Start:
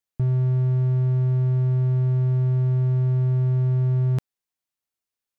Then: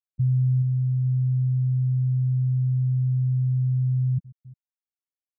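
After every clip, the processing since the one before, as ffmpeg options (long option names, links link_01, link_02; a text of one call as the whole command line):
ffmpeg -i in.wav -af "aecho=1:1:426|852|1278:0.251|0.0754|0.0226,afftfilt=real='re*gte(hypot(re,im),0.282)':imag='im*gte(hypot(re,im),0.282)':win_size=1024:overlap=0.75" out.wav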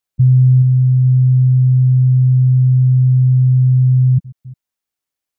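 ffmpeg -i in.wav -af "acontrast=24,volume=7dB" out.wav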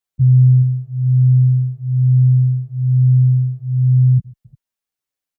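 ffmpeg -i in.wav -filter_complex "[0:a]asplit=2[link_01][link_02];[link_02]adelay=9.1,afreqshift=-1.1[link_03];[link_01][link_03]amix=inputs=2:normalize=1" out.wav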